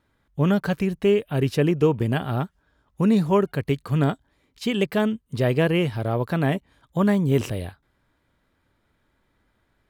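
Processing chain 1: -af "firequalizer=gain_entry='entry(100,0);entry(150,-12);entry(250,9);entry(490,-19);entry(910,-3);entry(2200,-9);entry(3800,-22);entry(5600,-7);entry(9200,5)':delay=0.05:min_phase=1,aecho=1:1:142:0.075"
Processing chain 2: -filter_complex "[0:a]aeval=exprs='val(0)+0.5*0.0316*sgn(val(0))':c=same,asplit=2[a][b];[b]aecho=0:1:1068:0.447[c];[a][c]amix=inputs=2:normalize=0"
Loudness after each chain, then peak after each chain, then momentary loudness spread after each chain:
-24.5, -22.0 LUFS; -8.5, -8.0 dBFS; 11, 14 LU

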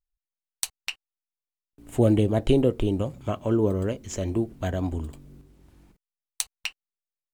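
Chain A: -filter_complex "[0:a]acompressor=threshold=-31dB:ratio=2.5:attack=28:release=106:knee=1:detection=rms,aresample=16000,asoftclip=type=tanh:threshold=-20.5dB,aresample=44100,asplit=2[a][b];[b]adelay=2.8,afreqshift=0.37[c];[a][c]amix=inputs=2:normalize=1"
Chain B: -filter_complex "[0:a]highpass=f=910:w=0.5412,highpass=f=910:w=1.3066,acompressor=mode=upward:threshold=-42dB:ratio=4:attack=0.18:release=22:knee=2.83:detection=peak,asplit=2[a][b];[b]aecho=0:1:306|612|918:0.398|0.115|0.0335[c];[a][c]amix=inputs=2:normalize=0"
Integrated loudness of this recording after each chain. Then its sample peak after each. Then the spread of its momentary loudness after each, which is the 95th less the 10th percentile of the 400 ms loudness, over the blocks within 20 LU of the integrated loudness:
-37.5, -37.0 LUFS; -21.5, -4.0 dBFS; 14, 20 LU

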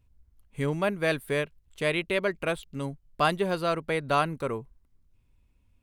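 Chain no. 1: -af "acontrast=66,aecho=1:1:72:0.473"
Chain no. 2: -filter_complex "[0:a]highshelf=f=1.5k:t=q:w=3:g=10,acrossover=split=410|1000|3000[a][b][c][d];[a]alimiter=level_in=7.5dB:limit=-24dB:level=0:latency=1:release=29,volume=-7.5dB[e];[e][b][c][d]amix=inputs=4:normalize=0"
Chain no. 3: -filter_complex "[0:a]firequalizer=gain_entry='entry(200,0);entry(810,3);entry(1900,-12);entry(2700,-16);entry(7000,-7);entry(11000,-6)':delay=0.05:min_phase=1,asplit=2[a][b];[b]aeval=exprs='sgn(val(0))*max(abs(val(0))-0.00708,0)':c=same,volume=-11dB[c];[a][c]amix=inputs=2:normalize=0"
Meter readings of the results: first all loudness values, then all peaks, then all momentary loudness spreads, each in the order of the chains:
-21.5, -20.0, -27.0 LUFS; -5.0, -3.0, -9.5 dBFS; 9, 16, 10 LU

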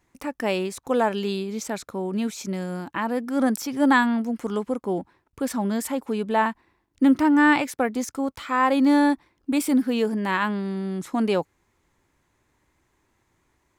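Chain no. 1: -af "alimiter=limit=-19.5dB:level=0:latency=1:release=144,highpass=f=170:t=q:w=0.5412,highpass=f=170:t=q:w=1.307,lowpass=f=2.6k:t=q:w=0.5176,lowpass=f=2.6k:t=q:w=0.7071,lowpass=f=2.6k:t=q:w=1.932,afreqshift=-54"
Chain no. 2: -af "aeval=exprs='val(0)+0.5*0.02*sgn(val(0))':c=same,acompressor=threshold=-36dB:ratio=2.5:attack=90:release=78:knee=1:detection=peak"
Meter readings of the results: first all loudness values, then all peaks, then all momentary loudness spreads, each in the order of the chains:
-30.0, -31.5 LUFS; -16.5, -13.5 dBFS; 6, 11 LU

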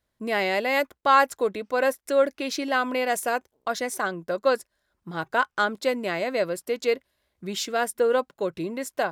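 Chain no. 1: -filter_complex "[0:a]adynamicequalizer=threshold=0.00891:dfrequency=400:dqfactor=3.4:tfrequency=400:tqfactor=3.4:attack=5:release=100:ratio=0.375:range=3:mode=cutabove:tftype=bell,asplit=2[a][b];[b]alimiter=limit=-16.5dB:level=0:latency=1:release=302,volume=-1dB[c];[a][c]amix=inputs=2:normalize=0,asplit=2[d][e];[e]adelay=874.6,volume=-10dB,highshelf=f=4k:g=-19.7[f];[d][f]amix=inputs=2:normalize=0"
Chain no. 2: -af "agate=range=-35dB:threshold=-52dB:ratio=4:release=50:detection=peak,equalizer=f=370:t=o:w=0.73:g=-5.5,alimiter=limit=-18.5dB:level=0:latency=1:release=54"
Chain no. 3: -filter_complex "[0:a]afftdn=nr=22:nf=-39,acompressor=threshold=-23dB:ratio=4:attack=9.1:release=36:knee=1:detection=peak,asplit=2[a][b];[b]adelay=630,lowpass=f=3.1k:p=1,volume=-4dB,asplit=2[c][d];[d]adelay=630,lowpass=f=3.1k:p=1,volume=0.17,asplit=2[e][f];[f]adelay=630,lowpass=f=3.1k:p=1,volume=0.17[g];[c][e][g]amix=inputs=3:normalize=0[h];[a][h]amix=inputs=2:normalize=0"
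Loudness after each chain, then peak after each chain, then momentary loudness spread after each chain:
-21.5, -30.0, -27.0 LUFS; -4.0, -18.5, -10.5 dBFS; 7, 7, 5 LU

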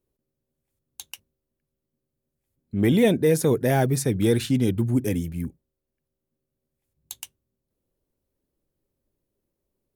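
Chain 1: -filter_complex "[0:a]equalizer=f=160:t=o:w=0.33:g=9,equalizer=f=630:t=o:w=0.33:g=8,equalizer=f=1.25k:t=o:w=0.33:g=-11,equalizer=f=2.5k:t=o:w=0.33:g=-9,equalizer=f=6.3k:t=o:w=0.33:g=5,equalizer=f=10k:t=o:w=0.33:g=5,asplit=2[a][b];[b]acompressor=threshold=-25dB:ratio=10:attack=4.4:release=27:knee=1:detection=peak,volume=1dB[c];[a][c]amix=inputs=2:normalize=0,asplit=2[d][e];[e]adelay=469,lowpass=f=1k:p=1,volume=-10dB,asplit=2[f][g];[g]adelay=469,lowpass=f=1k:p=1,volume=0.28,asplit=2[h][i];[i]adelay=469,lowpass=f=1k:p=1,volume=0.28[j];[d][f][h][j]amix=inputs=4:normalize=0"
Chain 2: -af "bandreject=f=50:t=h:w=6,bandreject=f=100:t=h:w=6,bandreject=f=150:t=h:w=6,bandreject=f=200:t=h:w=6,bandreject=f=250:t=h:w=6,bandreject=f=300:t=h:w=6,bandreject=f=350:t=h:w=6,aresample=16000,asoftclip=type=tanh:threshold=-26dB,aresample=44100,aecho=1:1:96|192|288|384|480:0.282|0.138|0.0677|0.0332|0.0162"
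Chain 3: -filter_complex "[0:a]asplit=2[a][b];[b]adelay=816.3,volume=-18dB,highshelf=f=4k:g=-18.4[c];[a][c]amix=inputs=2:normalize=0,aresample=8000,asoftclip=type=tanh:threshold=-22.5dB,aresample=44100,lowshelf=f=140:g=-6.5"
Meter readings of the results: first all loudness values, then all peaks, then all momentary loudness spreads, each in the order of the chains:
-17.0, -30.0, -29.5 LUFS; -3.0, -22.5, -19.5 dBFS; 19, 18, 21 LU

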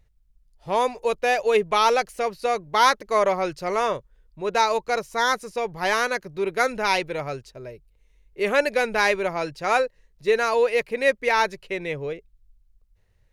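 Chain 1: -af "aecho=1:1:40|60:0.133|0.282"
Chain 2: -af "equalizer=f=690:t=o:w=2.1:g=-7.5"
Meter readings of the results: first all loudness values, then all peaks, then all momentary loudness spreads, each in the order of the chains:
-23.0, -27.5 LUFS; -5.0, -10.0 dBFS; 11, 11 LU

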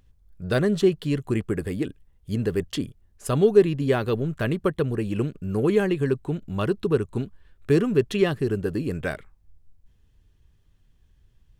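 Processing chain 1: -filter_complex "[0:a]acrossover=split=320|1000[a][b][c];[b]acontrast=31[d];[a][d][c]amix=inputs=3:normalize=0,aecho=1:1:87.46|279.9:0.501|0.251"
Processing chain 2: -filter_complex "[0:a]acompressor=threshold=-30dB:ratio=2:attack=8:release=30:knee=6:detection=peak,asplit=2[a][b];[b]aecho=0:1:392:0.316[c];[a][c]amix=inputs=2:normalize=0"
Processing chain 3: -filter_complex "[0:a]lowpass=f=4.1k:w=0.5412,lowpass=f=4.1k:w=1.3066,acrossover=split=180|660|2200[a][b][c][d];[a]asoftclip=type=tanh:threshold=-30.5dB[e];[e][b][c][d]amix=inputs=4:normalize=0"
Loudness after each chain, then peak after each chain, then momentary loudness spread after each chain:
-20.5, -29.5, -25.0 LUFS; -1.5, -15.5, -5.0 dBFS; 12, 9, 11 LU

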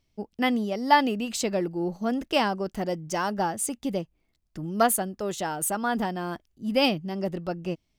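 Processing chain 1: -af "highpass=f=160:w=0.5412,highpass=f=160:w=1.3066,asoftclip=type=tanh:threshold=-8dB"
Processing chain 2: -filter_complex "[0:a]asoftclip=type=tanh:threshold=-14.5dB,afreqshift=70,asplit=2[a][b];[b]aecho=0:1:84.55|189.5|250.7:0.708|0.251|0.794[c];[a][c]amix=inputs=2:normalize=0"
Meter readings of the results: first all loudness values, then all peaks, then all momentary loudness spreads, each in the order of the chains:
-27.5, -25.0 LUFS; -9.0, -9.0 dBFS; 11, 8 LU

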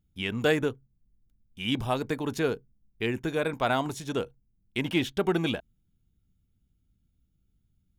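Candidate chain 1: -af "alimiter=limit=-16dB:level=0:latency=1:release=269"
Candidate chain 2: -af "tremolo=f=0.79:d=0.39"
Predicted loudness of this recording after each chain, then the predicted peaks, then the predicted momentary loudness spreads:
-31.0, -31.5 LUFS; -16.0, -12.5 dBFS; 7, 10 LU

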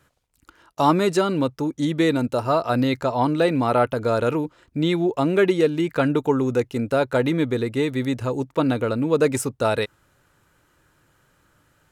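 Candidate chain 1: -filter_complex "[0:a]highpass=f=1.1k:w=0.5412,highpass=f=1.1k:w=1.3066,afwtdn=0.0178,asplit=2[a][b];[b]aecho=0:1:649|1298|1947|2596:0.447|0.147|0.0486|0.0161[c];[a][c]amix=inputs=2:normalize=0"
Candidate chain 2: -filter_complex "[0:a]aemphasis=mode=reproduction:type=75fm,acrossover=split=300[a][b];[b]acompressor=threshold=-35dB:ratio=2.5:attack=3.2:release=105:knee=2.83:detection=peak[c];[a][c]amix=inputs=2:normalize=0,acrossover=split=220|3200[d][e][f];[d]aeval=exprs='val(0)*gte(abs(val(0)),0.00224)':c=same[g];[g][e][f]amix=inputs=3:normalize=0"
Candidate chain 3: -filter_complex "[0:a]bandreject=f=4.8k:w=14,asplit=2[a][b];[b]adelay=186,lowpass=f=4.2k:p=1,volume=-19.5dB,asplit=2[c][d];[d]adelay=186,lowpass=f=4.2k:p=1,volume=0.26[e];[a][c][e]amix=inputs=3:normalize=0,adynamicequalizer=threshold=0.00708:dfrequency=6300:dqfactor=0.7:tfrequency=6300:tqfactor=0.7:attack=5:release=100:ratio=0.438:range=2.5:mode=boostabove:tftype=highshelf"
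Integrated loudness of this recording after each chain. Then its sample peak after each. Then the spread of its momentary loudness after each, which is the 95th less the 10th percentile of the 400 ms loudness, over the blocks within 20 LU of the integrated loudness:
-32.0, -26.0, -22.0 LUFS; -13.0, -12.5, -5.0 dBFS; 10, 5, 6 LU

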